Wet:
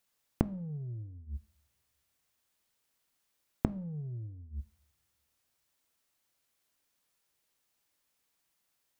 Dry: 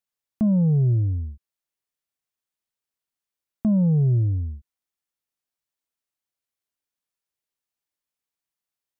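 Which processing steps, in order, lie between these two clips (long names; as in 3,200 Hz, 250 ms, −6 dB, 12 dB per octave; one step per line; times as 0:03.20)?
gate with flip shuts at −25 dBFS, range −31 dB
coupled-rooms reverb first 0.51 s, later 2.3 s, from −25 dB, DRR 14.5 dB
level +10 dB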